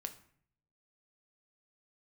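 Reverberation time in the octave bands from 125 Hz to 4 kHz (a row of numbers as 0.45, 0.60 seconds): 1.0, 0.75, 0.60, 0.55, 0.55, 0.40 seconds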